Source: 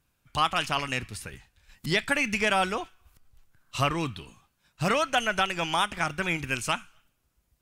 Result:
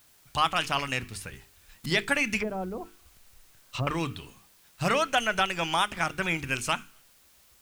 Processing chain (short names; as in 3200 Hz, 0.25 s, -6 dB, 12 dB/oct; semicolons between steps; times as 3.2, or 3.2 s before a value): 2.39–3.87 treble ducked by the level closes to 450 Hz, closed at -24.5 dBFS; notches 50/100/150/200/250/300/350/400/450 Hz; requantised 10-bit, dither triangular